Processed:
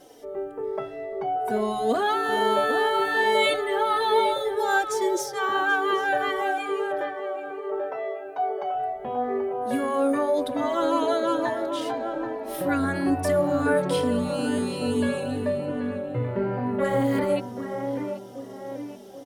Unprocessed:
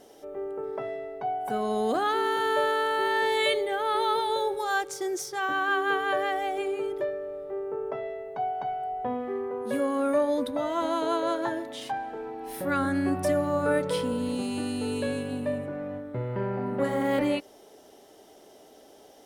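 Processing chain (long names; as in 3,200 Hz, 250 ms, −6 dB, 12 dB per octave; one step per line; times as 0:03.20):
0:06.41–0:08.75: high-pass filter 400 Hz 12 dB per octave
tape delay 783 ms, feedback 52%, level −5 dB, low-pass 1,300 Hz
barber-pole flanger 3.3 ms −2.3 Hz
level +5.5 dB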